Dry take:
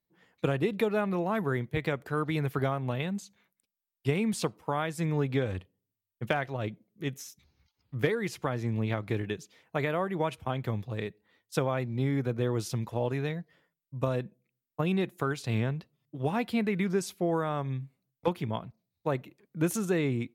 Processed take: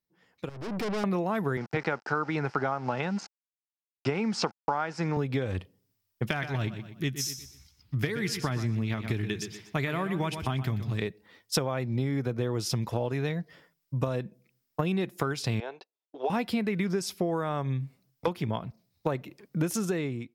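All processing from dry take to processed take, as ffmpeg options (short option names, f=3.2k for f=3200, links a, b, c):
-filter_complex "[0:a]asettb=1/sr,asplit=3[a][b][c];[a]atrim=end=0.494[d];[b]atrim=start=0.49:end=1.04,asetpts=PTS-STARTPTS,afade=t=in:d=0.004:c=qsin,afade=t=out:st=0.546:d=0.004:c=qsin,tiltshelf=f=840:g=7.5,aeval=exprs='(tanh(89.1*val(0)+0.35)-tanh(0.35))/89.1':c=same[e];[c]atrim=start=1.036[f];[d][e]acrossfade=d=0.004:c1=hsin:c2=qsin[g];[g][f]acrossfade=d=0.004:c1=qsin:c2=hsin,asettb=1/sr,asplit=3[h][i][j];[h]atrim=end=1.574[k];[i]atrim=start=1.57:end=5.17,asetpts=PTS-STARTPTS,afade=t=in:d=0.004:c=qsin,afade=t=out:st=3.596:d=0.004:c=qsin,aeval=exprs='val(0)*gte(abs(val(0)),0.00562)':c=same,highpass=170,equalizer=f=840:t=q:w=4:g=10,equalizer=f=1.4k:t=q:w=4:g=9,equalizer=f=3.5k:t=q:w=4:g=-8,lowpass=f=6.1k:w=0.5412,lowpass=f=6.1k:w=1.3066[l];[j]atrim=start=5.166[m];[k][l]acrossfade=d=0.004:c1=hsin:c2=qsin[n];[n][m]acrossfade=d=0.004:c1=qsin:c2=hsin,asettb=1/sr,asplit=3[o][p][q];[o]atrim=end=6.304[r];[p]atrim=start=6.3:end=11.02,asetpts=PTS-STARTPTS,afade=t=in:d=0.004:c=qsin,afade=t=out:st=4.716:d=0.004:c=qsin,equalizer=f=650:t=o:w=2.1:g=-8,bandreject=f=510:w=5.9,aecho=1:1:122|244|366|488:0.251|0.0879|0.0308|0.0108,atrim=end_sample=208152[s];[q]atrim=start=11.016[t];[r][s]acrossfade=d=0.004:c1=hsin:c2=qsin[u];[u][t]acrossfade=d=0.004:c1=qsin:c2=hsin,asettb=1/sr,asplit=3[v][w][x];[v]atrim=end=15.604[y];[w]atrim=start=15.6:end=16.3,asetpts=PTS-STARTPTS,afade=t=in:d=0.004:c=qsin,afade=t=out:st=0.696:d=0.004:c=qsin,highpass=f=440:w=0.5412,highpass=f=440:w=1.3066,equalizer=f=560:t=q:w=4:g=-5,equalizer=f=810:t=q:w=4:g=3,equalizer=f=1.2k:t=q:w=4:g=-7,equalizer=f=1.9k:t=q:w=4:g=-10,equalizer=f=3k:t=q:w=4:g=-6,equalizer=f=5.1k:t=q:w=4:g=-7,lowpass=f=5.4k:w=0.5412,lowpass=f=5.4k:w=1.3066,agate=range=-22dB:threshold=-60dB:ratio=16:release=100:detection=peak[z];[x]atrim=start=16.296[aa];[y][z]acrossfade=d=0.004:c1=hsin:c2=qsin[ab];[ab][aa]acrossfade=d=0.004:c1=qsin:c2=hsin,acompressor=threshold=-37dB:ratio=5,equalizer=f=5.2k:w=5.1:g=8,dynaudnorm=f=230:g=5:m=14dB,volume=-3.5dB"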